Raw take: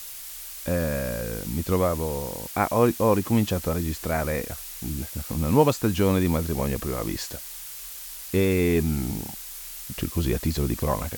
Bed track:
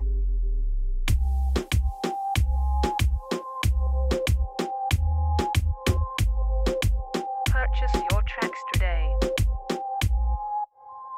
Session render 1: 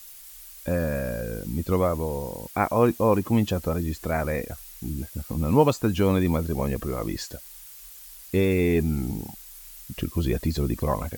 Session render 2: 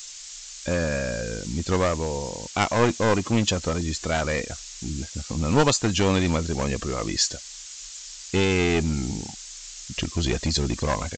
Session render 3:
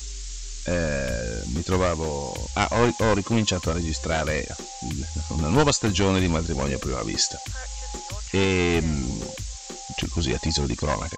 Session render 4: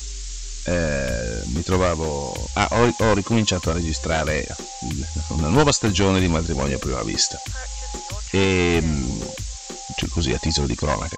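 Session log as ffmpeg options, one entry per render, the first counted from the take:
-af "afftdn=nr=9:nf=-39"
-af "aresample=16000,aeval=exprs='clip(val(0),-1,0.0708)':c=same,aresample=44100,crystalizer=i=6.5:c=0"
-filter_complex "[1:a]volume=-11.5dB[a];[0:a][a]amix=inputs=2:normalize=0"
-af "volume=3dB"

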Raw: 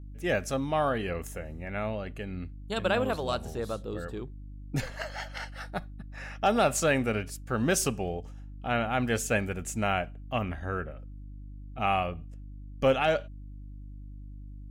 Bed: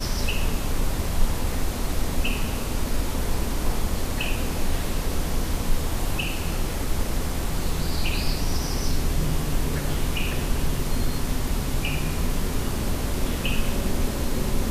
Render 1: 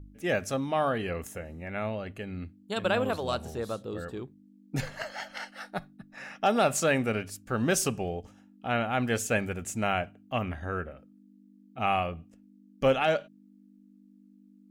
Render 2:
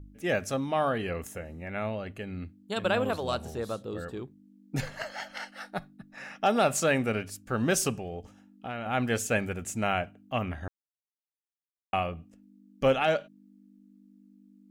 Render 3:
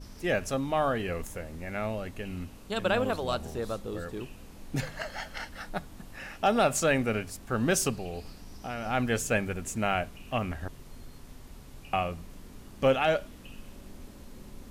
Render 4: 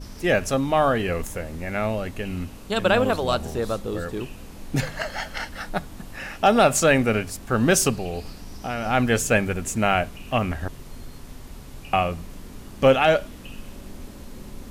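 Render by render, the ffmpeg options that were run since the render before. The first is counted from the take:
-af "bandreject=f=50:t=h:w=4,bandreject=f=100:t=h:w=4,bandreject=f=150:t=h:w=4"
-filter_complex "[0:a]asettb=1/sr,asplit=3[a][b][c];[a]atrim=end=7.984[d];[b]atrim=start=7.98:end=8.86,asetpts=PTS-STARTPTS,afade=t=in:d=0.004:c=qsin,afade=t=out:st=0.876:d=0.004:c=qsin,acompressor=threshold=-33dB:ratio=4:attack=3.2:release=140:knee=1:detection=peak[e];[c]atrim=start=8.856[f];[d][e]acrossfade=d=0.004:c1=hsin:c2=qsin[g];[g][f]acrossfade=d=0.004:c1=qsin:c2=hsin,asplit=3[h][i][j];[h]atrim=end=10.68,asetpts=PTS-STARTPTS,afade=t=out:st=10.676:d=0.004:c=hsin[k];[i]atrim=start=10.68:end=11.93,asetpts=PTS-STARTPTS,volume=0[l];[j]atrim=start=11.93,asetpts=PTS-STARTPTS,afade=t=in:d=0.004:c=hsin[m];[k][l][m]concat=n=3:v=0:a=1"
-filter_complex "[1:a]volume=-22.5dB[a];[0:a][a]amix=inputs=2:normalize=0"
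-af "volume=7.5dB"

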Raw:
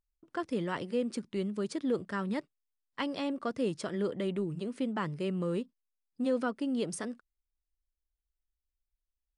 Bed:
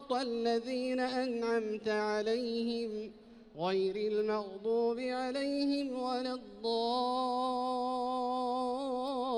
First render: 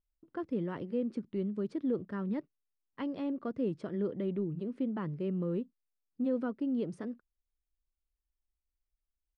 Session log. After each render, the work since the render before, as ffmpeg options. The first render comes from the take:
-af "firequalizer=gain_entry='entry(310,0);entry(710,-7);entry(7400,-25)':delay=0.05:min_phase=1"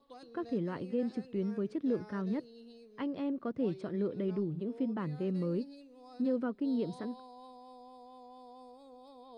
-filter_complex "[1:a]volume=-19dB[a];[0:a][a]amix=inputs=2:normalize=0"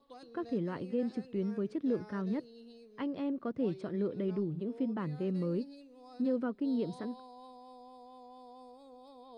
-af anull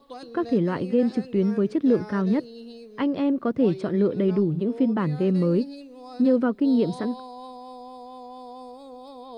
-af "volume=12dB"

